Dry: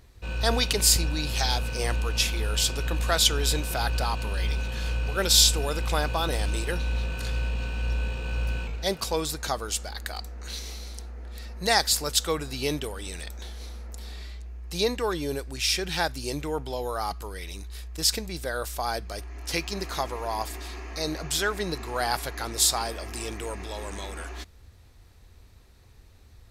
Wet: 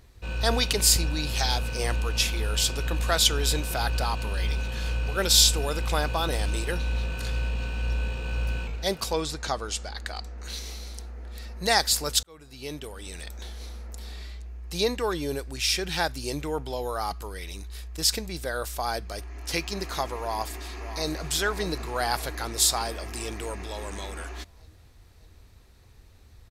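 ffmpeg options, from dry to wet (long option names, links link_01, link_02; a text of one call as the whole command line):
ffmpeg -i in.wav -filter_complex "[0:a]asettb=1/sr,asplit=3[link_01][link_02][link_03];[link_01]atrim=end=9.134[link_04];[link_02]atrim=start=9.13:end=10.38,asetpts=PTS-STARTPTS,afade=type=in:duration=0.004:curve=qsin,afade=type=out:start_time=1.246:duration=0.004:curve=qsin,lowpass=7200[link_05];[link_03]atrim=start=10.376[link_06];[link_04][link_05]acrossfade=duration=0.004:curve1=hsin:curve2=qsin[link_07];[link_07][link_06]acrossfade=duration=0.004:curve1=qsin:curve2=hsin,asplit=2[link_08][link_09];[link_09]afade=type=in:start_time=20.2:duration=0.01,afade=type=out:start_time=21.28:duration=0.01,aecho=0:1:600|1200|1800|2400|3000|3600|4200:0.266073|0.159644|0.0957861|0.0574717|0.034483|0.0206898|0.0124139[link_10];[link_08][link_10]amix=inputs=2:normalize=0,asplit=2[link_11][link_12];[link_11]atrim=end=12.23,asetpts=PTS-STARTPTS,afade=type=out:start_time=12.226:duration=0.004:curve=hsin[link_13];[link_12]atrim=start=12.23,asetpts=PTS-STARTPTS,afade=type=in:duration=1.2[link_14];[link_13][link_14]concat=n=2:v=0:a=1" out.wav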